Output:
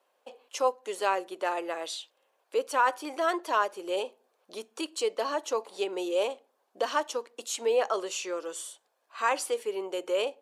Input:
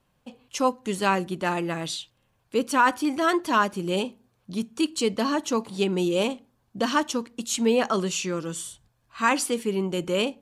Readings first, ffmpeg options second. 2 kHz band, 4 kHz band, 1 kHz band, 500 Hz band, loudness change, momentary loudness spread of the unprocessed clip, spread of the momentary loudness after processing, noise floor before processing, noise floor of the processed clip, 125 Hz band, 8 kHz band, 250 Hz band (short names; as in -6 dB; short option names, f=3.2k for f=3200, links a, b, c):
-6.0 dB, -6.0 dB, -4.0 dB, -2.5 dB, -5.0 dB, 10 LU, 13 LU, -70 dBFS, -74 dBFS, under -30 dB, -6.0 dB, -14.5 dB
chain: -filter_complex "[0:a]highpass=f=420:w=0.5412,highpass=f=420:w=1.3066,equalizer=f=540:w=0.76:g=7,asplit=2[a][b];[b]acompressor=threshold=-35dB:ratio=6,volume=0dB[c];[a][c]amix=inputs=2:normalize=0,volume=-8.5dB"